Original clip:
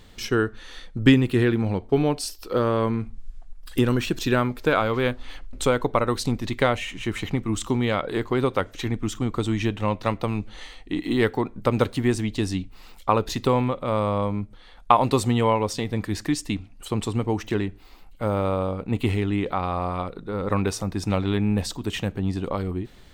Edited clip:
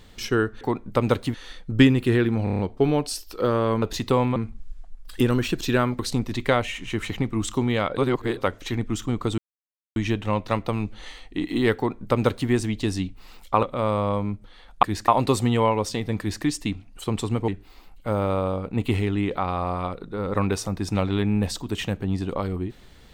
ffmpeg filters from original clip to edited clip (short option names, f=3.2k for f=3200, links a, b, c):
-filter_complex "[0:a]asplit=18[a][b][c][d][e][f][g][h][i][j][k][l][m][n][o][p][q][r];[a]atrim=end=0.612[s];[b]atrim=start=11.308:end=12.042[t];[c]atrim=start=0.608:end=1.742[u];[d]atrim=start=1.708:end=1.742[v];[e]atrim=start=1.708:end=1.742[w];[f]atrim=start=1.708:end=1.742[x];[g]atrim=start=1.708:end=1.742[y];[h]atrim=start=1.708:end=2.942[z];[i]atrim=start=13.178:end=13.722[aa];[j]atrim=start=2.938:end=4.572[ab];[k]atrim=start=6.118:end=8.102[ac];[l]atrim=start=8.098:end=8.502,asetpts=PTS-STARTPTS,areverse[ad];[m]atrim=start=8.498:end=9.51,asetpts=PTS-STARTPTS,afade=t=out:st=1.008:d=0.004:c=hsin,apad=pad_dur=0.58[ae];[n]atrim=start=9.51:end=13.182,asetpts=PTS-STARTPTS,afade=t=in:d=0.004:c=hsin[af];[o]atrim=start=13.718:end=14.922[ag];[p]atrim=start=16.028:end=16.282[ah];[q]atrim=start=14.918:end=17.322[ai];[r]atrim=start=17.628[aj];[s][t]acrossfade=d=0.004:c1=hsin:c2=hsin[ak];[ak][u]acrossfade=d=0.004:c1=hsin:c2=hsin[al];[al][v]acrossfade=d=0.004:c1=hsin:c2=hsin[am];[am][w]acrossfade=d=0.004:c1=hsin:c2=hsin[an];[an][x]acrossfade=d=0.004:c1=hsin:c2=hsin[ao];[ao][y]acrossfade=d=0.004:c1=hsin:c2=hsin[ap];[ap][z]acrossfade=d=0.004:c1=hsin:c2=hsin[aq];[aq][aa]acrossfade=d=0.004:c1=hsin:c2=hsin[ar];[ar][ab]acrossfade=d=0.004:c1=hsin:c2=hsin[as];[as][ac]acrossfade=d=0.004:c1=hsin:c2=hsin[at];[at][ad]acrossfade=d=0.004:c1=hsin:c2=hsin[au];[ae][af]concat=n=2:v=0:a=1[av];[au][av]acrossfade=d=0.004:c1=hsin:c2=hsin[aw];[aw][ag]acrossfade=d=0.004:c1=hsin:c2=hsin[ax];[ax][ah]acrossfade=d=0.004:c1=hsin:c2=hsin[ay];[ay][ai]acrossfade=d=0.004:c1=hsin:c2=hsin[az];[az][aj]acrossfade=d=0.004:c1=hsin:c2=hsin"